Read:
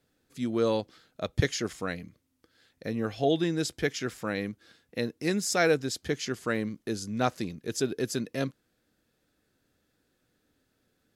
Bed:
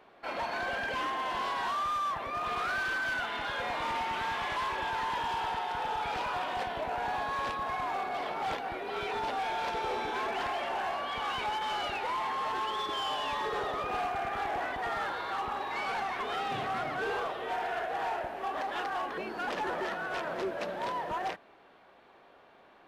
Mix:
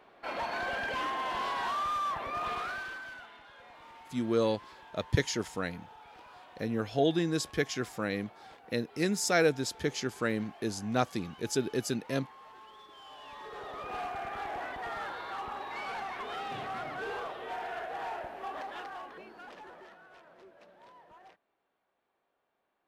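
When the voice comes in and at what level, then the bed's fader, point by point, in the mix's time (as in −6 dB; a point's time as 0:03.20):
3.75 s, −1.5 dB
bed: 0:02.47 −0.5 dB
0:03.45 −19.5 dB
0:12.94 −19.5 dB
0:13.98 −4.5 dB
0:18.51 −4.5 dB
0:20.23 −22 dB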